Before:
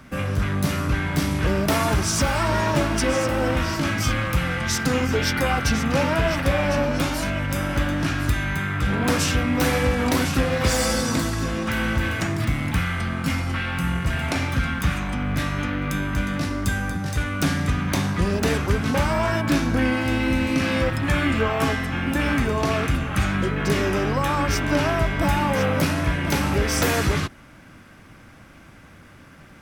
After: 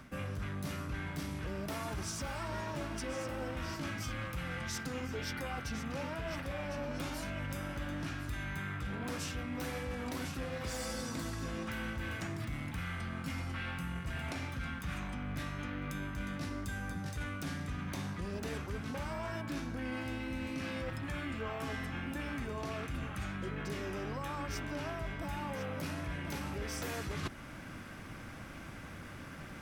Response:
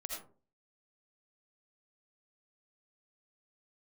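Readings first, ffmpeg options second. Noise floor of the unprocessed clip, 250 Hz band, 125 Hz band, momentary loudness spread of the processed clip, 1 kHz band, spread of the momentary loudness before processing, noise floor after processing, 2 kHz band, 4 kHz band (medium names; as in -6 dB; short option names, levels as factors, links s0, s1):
-47 dBFS, -16.5 dB, -16.5 dB, 2 LU, -17.0 dB, 4 LU, -47 dBFS, -16.0 dB, -16.5 dB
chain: -af "alimiter=limit=0.188:level=0:latency=1:release=405,areverse,acompressor=threshold=0.0158:ratio=10,areverse"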